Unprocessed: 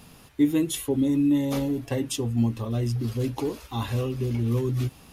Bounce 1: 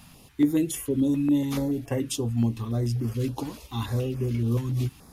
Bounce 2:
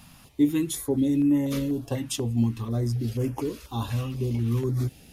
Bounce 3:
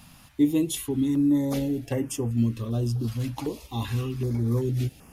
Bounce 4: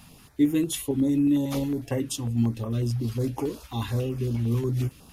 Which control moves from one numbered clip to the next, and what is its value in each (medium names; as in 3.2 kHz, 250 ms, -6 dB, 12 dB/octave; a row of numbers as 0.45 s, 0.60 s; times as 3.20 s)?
step-sequenced notch, rate: 7 Hz, 4.1 Hz, 2.6 Hz, 11 Hz